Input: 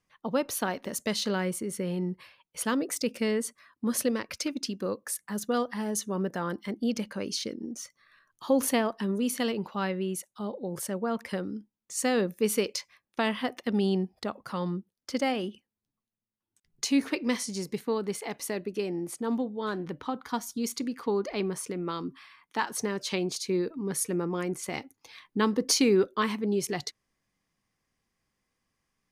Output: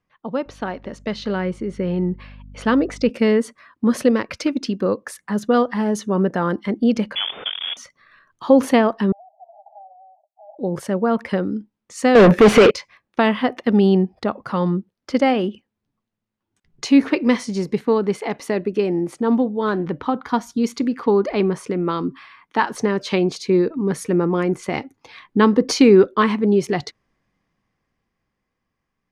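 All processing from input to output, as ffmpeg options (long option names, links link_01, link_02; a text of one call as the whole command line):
ffmpeg -i in.wav -filter_complex "[0:a]asettb=1/sr,asplit=3[link_01][link_02][link_03];[link_01]atrim=end=0.464[link_04];[link_02]atrim=start=0.46:end=3.1,asetpts=PTS-STARTPTS,afade=type=in:duration=0.004:curve=qsin,afade=type=out:start_time=2.636:duration=0.004:curve=qsin,lowpass=5800,bandreject=frequency=1000:width=26,aeval=exprs='val(0)+0.00316*(sin(2*PI*50*n/s)+sin(2*PI*2*50*n/s)/2+sin(2*PI*3*50*n/s)/3+sin(2*PI*4*50*n/s)/4+sin(2*PI*5*50*n/s)/5)':channel_layout=same[link_05];[link_03]atrim=start=3.096[link_06];[link_04][link_05]acrossfade=duration=0.004:curve1=hsin:curve2=qsin[link_07];[link_07][link_06]acrossfade=duration=0.004:curve1=qsin:curve2=hsin,asettb=1/sr,asplit=3[link_08][link_09][link_10];[link_08]atrim=end=7.154[link_11];[link_09]atrim=start=7.15:end=7.77,asetpts=PTS-STARTPTS,afade=type=in:duration=0.004:curve=qsin,afade=type=out:start_time=0.616:duration=0.004:curve=qsin,acrusher=bits=7:dc=4:mix=0:aa=0.000001,lowpass=frequency=3100:width_type=q:width=0.5098,lowpass=frequency=3100:width_type=q:width=0.6013,lowpass=frequency=3100:width_type=q:width=0.9,lowpass=frequency=3100:width_type=q:width=2.563,afreqshift=-3600,aemphasis=mode=production:type=bsi[link_12];[link_10]atrim=start=7.766[link_13];[link_11][link_12]acrossfade=duration=0.004:curve1=hsin:curve2=qsin[link_14];[link_14][link_13]acrossfade=duration=0.004:curve1=qsin:curve2=hsin,asettb=1/sr,asplit=3[link_15][link_16][link_17];[link_15]atrim=end=9.124[link_18];[link_16]atrim=start=9.12:end=10.59,asetpts=PTS-STARTPTS,afade=type=in:duration=0.004:curve=qsin,afade=type=out:start_time=1.466:duration=0.004:curve=qsin,acompressor=threshold=-34dB:ratio=3:attack=3.2:release=140:knee=1:detection=peak,aeval=exprs='(tanh(56.2*val(0)+0.45)-tanh(0.45))/56.2':channel_layout=same,asuperpass=centerf=710:order=12:qfactor=3.2[link_19];[link_17]atrim=start=10.586[link_20];[link_18][link_19]acrossfade=duration=0.004:curve1=hsin:curve2=qsin[link_21];[link_21][link_20]acrossfade=duration=0.004:curve1=qsin:curve2=hsin,asettb=1/sr,asplit=3[link_22][link_23][link_24];[link_22]atrim=end=12.154[link_25];[link_23]atrim=start=12.15:end=12.71,asetpts=PTS-STARTPTS,afade=type=in:duration=0.004:curve=qsin,afade=type=out:start_time=0.556:duration=0.004:curve=qsin,highpass=frequency=63:width=0.5412,highpass=frequency=63:width=1.3066,bass=frequency=250:gain=3,treble=frequency=4000:gain=-9,asplit=2[link_26][link_27];[link_27]highpass=frequency=720:poles=1,volume=38dB,asoftclip=type=tanh:threshold=-14dB[link_28];[link_26][link_28]amix=inputs=2:normalize=0,lowpass=frequency=4500:poles=1,volume=-6dB[link_29];[link_24]atrim=start=12.706[link_30];[link_25][link_29]acrossfade=duration=0.004:curve1=hsin:curve2=qsin[link_31];[link_31][link_30]acrossfade=duration=0.004:curve1=qsin:curve2=hsin,highshelf=frequency=6300:gain=-4,dynaudnorm=framelen=170:gausssize=21:maxgain=8dB,aemphasis=mode=reproduction:type=75fm,volume=3dB" out.wav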